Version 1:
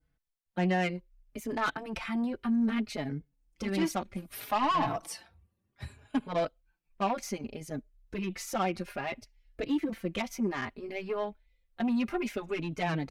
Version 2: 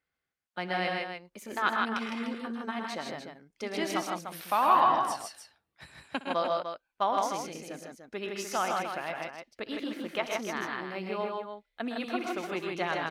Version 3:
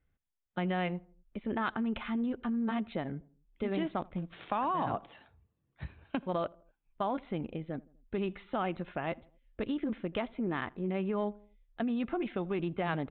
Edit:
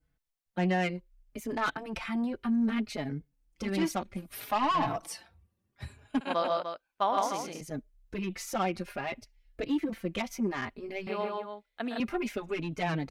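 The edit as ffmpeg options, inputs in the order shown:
ffmpeg -i take0.wav -i take1.wav -filter_complex "[1:a]asplit=2[link_01][link_02];[0:a]asplit=3[link_03][link_04][link_05];[link_03]atrim=end=6.212[link_06];[link_01]atrim=start=6.208:end=7.612[link_07];[link_04]atrim=start=7.608:end=11.072[link_08];[link_02]atrim=start=11.068:end=12.002[link_09];[link_05]atrim=start=11.998[link_10];[link_06][link_07]acrossfade=duration=0.004:curve1=hsin:curve2=hsin[link_11];[link_11][link_08]acrossfade=duration=0.004:curve1=hsin:curve2=hsin[link_12];[link_12][link_09]acrossfade=duration=0.004:curve1=hsin:curve2=hsin[link_13];[link_13][link_10]acrossfade=duration=0.004:curve1=hsin:curve2=hsin" out.wav

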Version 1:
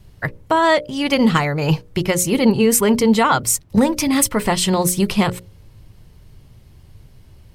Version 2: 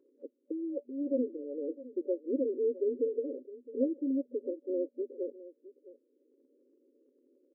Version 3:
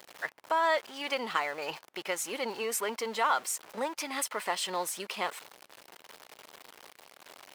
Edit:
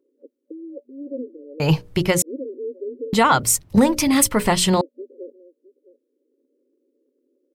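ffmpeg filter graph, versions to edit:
ffmpeg -i take0.wav -i take1.wav -filter_complex "[0:a]asplit=2[link_01][link_02];[1:a]asplit=3[link_03][link_04][link_05];[link_03]atrim=end=1.602[link_06];[link_01]atrim=start=1.598:end=2.222[link_07];[link_04]atrim=start=2.218:end=3.132[link_08];[link_02]atrim=start=3.128:end=4.812[link_09];[link_05]atrim=start=4.808[link_10];[link_06][link_07]acrossfade=duration=0.004:curve1=hsin:curve2=hsin[link_11];[link_11][link_08]acrossfade=duration=0.004:curve1=hsin:curve2=hsin[link_12];[link_12][link_09]acrossfade=duration=0.004:curve1=hsin:curve2=hsin[link_13];[link_13][link_10]acrossfade=duration=0.004:curve1=hsin:curve2=hsin" out.wav

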